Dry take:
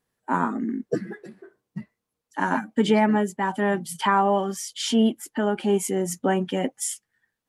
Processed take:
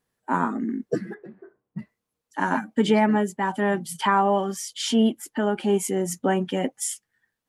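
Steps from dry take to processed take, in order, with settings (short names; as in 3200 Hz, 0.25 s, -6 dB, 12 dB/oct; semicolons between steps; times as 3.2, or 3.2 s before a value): 1.14–1.79 LPF 1500 Hz 12 dB/oct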